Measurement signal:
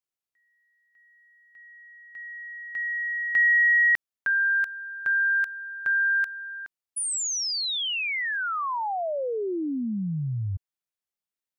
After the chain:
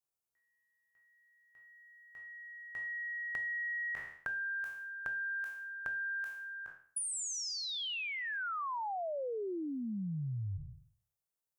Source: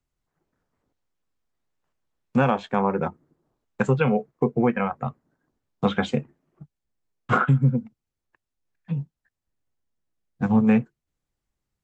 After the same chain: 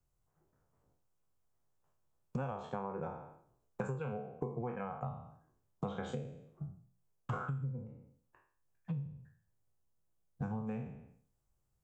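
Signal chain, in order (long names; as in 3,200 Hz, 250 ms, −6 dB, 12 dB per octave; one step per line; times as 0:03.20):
peak hold with a decay on every bin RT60 0.49 s
octave-band graphic EQ 125/250/2,000/4,000 Hz +4/−8/−9/−8 dB
downward compressor 10 to 1, threshold −36 dBFS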